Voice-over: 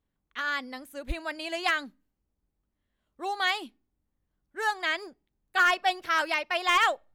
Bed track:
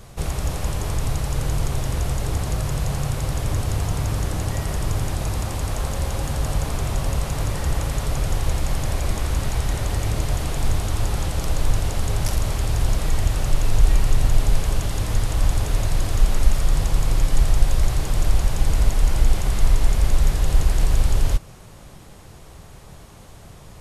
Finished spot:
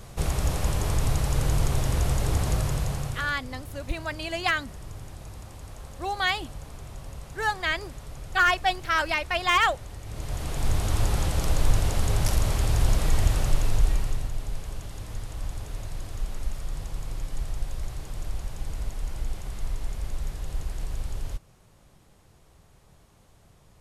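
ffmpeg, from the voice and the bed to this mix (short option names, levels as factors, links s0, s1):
-filter_complex "[0:a]adelay=2800,volume=1.19[s0];[1:a]volume=5.31,afade=t=out:st=2.53:d=0.87:silence=0.158489,afade=t=in:st=10.05:d=0.89:silence=0.16788,afade=t=out:st=13.3:d=1.01:silence=0.237137[s1];[s0][s1]amix=inputs=2:normalize=0"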